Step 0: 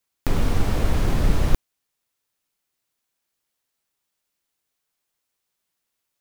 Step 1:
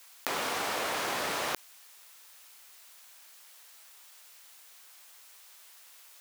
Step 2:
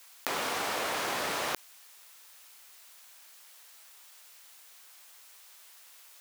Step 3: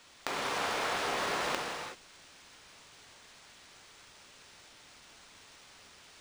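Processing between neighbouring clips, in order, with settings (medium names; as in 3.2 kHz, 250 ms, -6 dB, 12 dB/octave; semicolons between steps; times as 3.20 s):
high-pass 730 Hz 12 dB/octave; level flattener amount 50%; trim +1 dB
no audible change
gated-style reverb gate 410 ms flat, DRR 0 dB; decimation joined by straight lines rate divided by 3×; trim -3 dB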